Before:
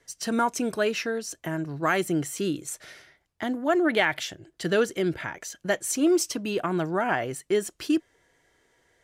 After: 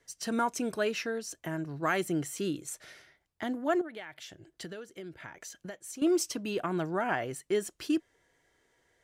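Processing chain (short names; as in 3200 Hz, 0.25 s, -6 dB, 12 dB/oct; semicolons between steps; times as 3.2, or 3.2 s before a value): 3.81–6.02 compressor 10:1, threshold -35 dBFS, peak gain reduction 17.5 dB; gain -5 dB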